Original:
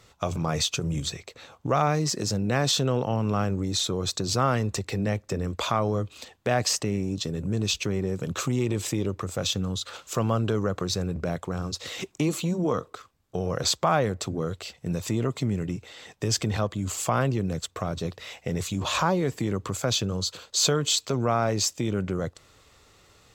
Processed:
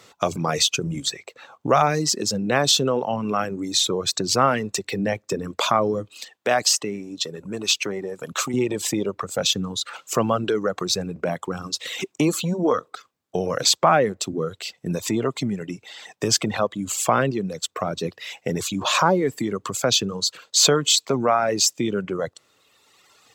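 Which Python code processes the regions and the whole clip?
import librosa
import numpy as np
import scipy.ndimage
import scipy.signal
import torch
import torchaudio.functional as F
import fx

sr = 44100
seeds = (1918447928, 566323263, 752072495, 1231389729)

y = fx.chain(x, sr, fx.highpass(hz=40.0, slope=12),
    fx.low_shelf(hz=290.0, db=-10.0), at=(6.2, 8.54))
y = scipy.signal.sosfilt(scipy.signal.butter(2, 190.0, 'highpass', fs=sr, output='sos'), y)
y = fx.dereverb_blind(y, sr, rt60_s=1.8)
y = y * librosa.db_to_amplitude(7.0)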